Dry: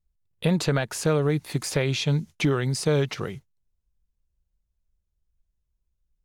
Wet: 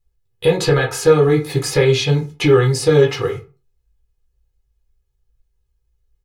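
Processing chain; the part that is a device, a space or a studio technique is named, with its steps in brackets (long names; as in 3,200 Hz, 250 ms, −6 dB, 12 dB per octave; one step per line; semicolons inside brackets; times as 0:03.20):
microphone above a desk (comb filter 2.4 ms, depth 74%; convolution reverb RT60 0.35 s, pre-delay 8 ms, DRR −2 dB)
level +3 dB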